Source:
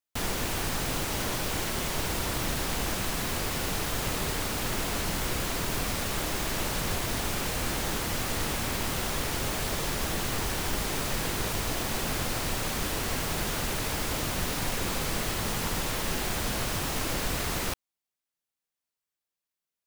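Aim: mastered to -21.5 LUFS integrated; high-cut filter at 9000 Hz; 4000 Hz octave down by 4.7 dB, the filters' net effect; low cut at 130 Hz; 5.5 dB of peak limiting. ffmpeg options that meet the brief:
-af "highpass=130,lowpass=9k,equalizer=f=4k:t=o:g=-6,volume=12.5dB,alimiter=limit=-12.5dB:level=0:latency=1"

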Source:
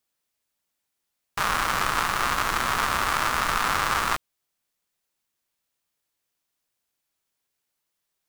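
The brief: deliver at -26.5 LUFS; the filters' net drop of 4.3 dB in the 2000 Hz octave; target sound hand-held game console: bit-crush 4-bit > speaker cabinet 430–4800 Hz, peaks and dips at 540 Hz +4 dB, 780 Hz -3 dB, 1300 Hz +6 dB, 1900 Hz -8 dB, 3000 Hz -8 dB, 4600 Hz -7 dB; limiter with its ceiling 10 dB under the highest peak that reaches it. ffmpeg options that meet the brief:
-af "equalizer=f=2k:t=o:g=-4,alimiter=limit=-17.5dB:level=0:latency=1,acrusher=bits=3:mix=0:aa=0.000001,highpass=430,equalizer=f=540:t=q:w=4:g=4,equalizer=f=780:t=q:w=4:g=-3,equalizer=f=1.3k:t=q:w=4:g=6,equalizer=f=1.9k:t=q:w=4:g=-8,equalizer=f=3k:t=q:w=4:g=-8,equalizer=f=4.6k:t=q:w=4:g=-7,lowpass=f=4.8k:w=0.5412,lowpass=f=4.8k:w=1.3066,volume=8.5dB"

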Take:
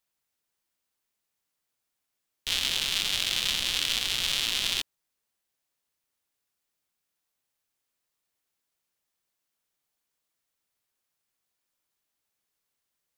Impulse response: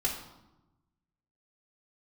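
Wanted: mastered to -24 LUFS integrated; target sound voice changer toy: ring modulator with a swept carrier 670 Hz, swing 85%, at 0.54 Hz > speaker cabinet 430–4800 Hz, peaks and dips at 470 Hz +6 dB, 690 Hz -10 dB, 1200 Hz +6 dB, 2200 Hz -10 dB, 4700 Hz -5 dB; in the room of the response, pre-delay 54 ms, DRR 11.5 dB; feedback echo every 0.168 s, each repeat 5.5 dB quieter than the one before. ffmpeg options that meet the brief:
-filter_complex "[0:a]aecho=1:1:168|336|504|672|840|1008|1176:0.531|0.281|0.149|0.079|0.0419|0.0222|0.0118,asplit=2[a][b];[1:a]atrim=start_sample=2205,adelay=54[c];[b][c]afir=irnorm=-1:irlink=0,volume=-17.5dB[d];[a][d]amix=inputs=2:normalize=0,aeval=exprs='val(0)*sin(2*PI*670*n/s+670*0.85/0.54*sin(2*PI*0.54*n/s))':c=same,highpass=430,equalizer=f=470:t=q:w=4:g=6,equalizer=f=690:t=q:w=4:g=-10,equalizer=f=1.2k:t=q:w=4:g=6,equalizer=f=2.2k:t=q:w=4:g=-10,equalizer=f=4.7k:t=q:w=4:g=-5,lowpass=f=4.8k:w=0.5412,lowpass=f=4.8k:w=1.3066,volume=7dB"

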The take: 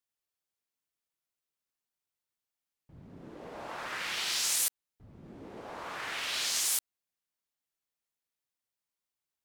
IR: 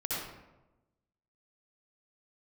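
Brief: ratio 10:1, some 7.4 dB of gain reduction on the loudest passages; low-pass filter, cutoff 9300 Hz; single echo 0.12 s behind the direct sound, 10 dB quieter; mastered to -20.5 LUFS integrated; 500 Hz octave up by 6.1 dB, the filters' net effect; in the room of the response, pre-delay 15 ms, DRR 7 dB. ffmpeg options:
-filter_complex "[0:a]lowpass=9.3k,equalizer=f=500:t=o:g=7.5,acompressor=threshold=-35dB:ratio=10,aecho=1:1:120:0.316,asplit=2[a][b];[1:a]atrim=start_sample=2205,adelay=15[c];[b][c]afir=irnorm=-1:irlink=0,volume=-12.5dB[d];[a][d]amix=inputs=2:normalize=0,volume=17dB"

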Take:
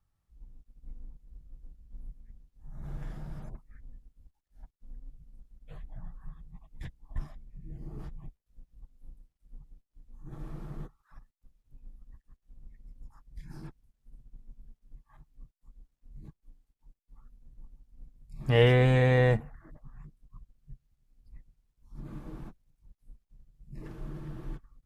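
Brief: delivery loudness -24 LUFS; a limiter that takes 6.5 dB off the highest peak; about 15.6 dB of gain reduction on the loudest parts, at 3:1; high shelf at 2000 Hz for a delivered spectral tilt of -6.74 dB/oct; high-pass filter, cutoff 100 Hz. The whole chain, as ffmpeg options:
-af "highpass=100,highshelf=f=2k:g=-3,acompressor=threshold=-39dB:ratio=3,volume=24dB,alimiter=limit=-7dB:level=0:latency=1"

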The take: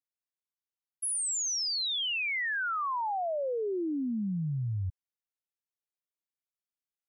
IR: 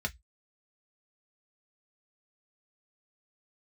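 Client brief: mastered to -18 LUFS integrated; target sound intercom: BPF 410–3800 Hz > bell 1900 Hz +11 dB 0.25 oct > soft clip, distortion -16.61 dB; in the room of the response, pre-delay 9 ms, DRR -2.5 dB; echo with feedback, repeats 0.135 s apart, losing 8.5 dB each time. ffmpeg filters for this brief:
-filter_complex "[0:a]aecho=1:1:135|270|405|540:0.376|0.143|0.0543|0.0206,asplit=2[a][b];[1:a]atrim=start_sample=2205,adelay=9[c];[b][c]afir=irnorm=-1:irlink=0,volume=-1.5dB[d];[a][d]amix=inputs=2:normalize=0,highpass=410,lowpass=3.8k,equalizer=f=1.9k:t=o:w=0.25:g=11,asoftclip=threshold=-14dB,volume=7.5dB"

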